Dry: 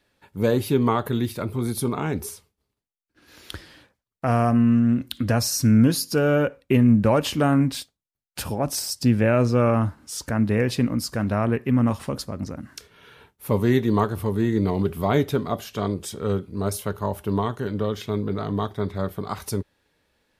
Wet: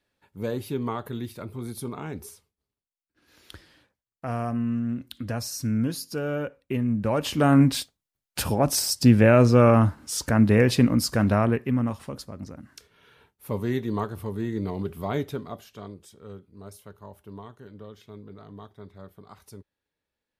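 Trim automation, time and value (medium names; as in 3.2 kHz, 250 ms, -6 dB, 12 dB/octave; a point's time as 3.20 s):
6.94 s -9 dB
7.61 s +3 dB
11.29 s +3 dB
11.96 s -7.5 dB
15.22 s -7.5 dB
16.14 s -18 dB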